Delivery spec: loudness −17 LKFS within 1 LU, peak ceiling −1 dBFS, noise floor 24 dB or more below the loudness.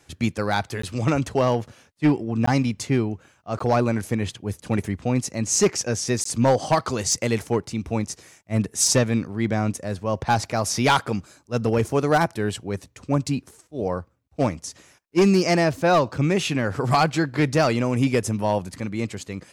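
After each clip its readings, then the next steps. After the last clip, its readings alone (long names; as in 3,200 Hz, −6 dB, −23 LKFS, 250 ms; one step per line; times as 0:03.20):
share of clipped samples 0.5%; peaks flattened at −11.5 dBFS; number of dropouts 4; longest dropout 14 ms; integrated loudness −23.0 LKFS; sample peak −11.5 dBFS; target loudness −17.0 LKFS
→ clipped peaks rebuilt −11.5 dBFS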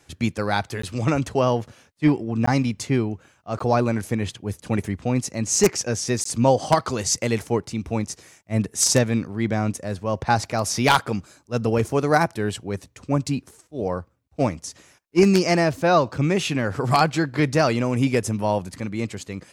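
share of clipped samples 0.0%; number of dropouts 4; longest dropout 14 ms
→ repair the gap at 0:00.82/0:02.46/0:03.59/0:06.24, 14 ms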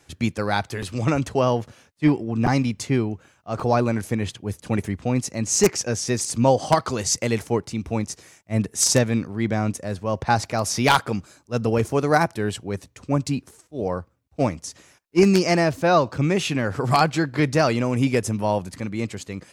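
number of dropouts 0; integrated loudness −22.5 LKFS; sample peak −2.5 dBFS; target loudness −17.0 LKFS
→ level +5.5 dB
brickwall limiter −1 dBFS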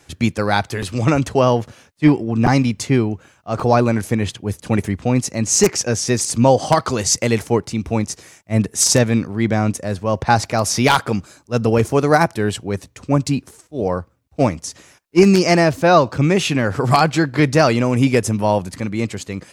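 integrated loudness −17.5 LKFS; sample peak −1.0 dBFS; background noise floor −56 dBFS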